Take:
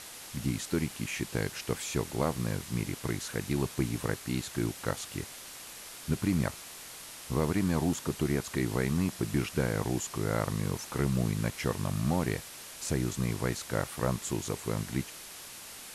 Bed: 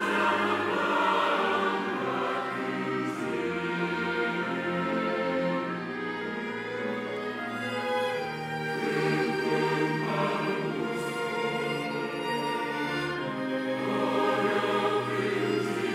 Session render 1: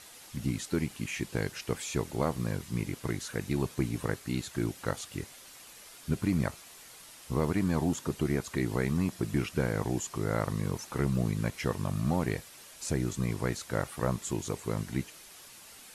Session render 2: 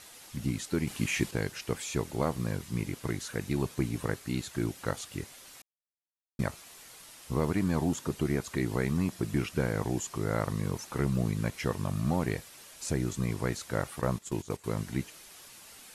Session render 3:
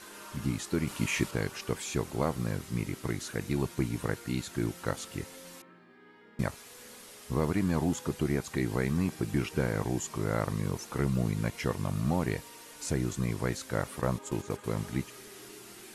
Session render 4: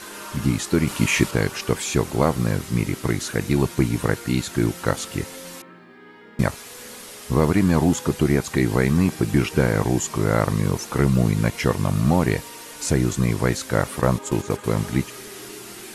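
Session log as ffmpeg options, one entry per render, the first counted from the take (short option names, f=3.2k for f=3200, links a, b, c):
-af "afftdn=nr=7:nf=-46"
-filter_complex "[0:a]asettb=1/sr,asplit=3[a][b][c];[a]atrim=end=0.874[d];[b]atrim=start=0.87:end=1.31,asetpts=PTS-STARTPTS,afade=t=in:d=0.004:c=qsin,afade=t=out:st=0.436:d=0.004:c=qsin,acontrast=38[e];[c]atrim=start=1.306[f];[d][e]acrossfade=d=0.004:c1=hsin:c2=qsin[g];[g][f]acrossfade=d=0.004:c1=qsin:c2=hsin,asettb=1/sr,asplit=3[h][i][j];[h]atrim=end=14.014[k];[i]atrim=start=14.01:end=14.64,asetpts=PTS-STARTPTS,afade=t=in:d=0.004:c=qsin,afade=t=out:st=0.626:d=0.004:c=qsin,agate=range=-12dB:threshold=-37dB:ratio=16:release=100:detection=peak[l];[j]atrim=start=14.636[m];[k][l]acrossfade=d=0.004:c1=hsin:c2=qsin[n];[n][m]acrossfade=d=0.004:c1=qsin:c2=hsin,asplit=3[o][p][q];[o]atrim=end=5.62,asetpts=PTS-STARTPTS,afade=t=out:st=5.616:d=0.004:c=hsin[r];[p]atrim=start=5.62:end=6.39,asetpts=PTS-STARTPTS,volume=0[s];[q]atrim=start=6.39,asetpts=PTS-STARTPTS,afade=t=in:d=0.004:c=hsin[t];[r][s][t]concat=n=3:v=0:a=1"
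-filter_complex "[1:a]volume=-23.5dB[a];[0:a][a]amix=inputs=2:normalize=0"
-af "volume=10.5dB"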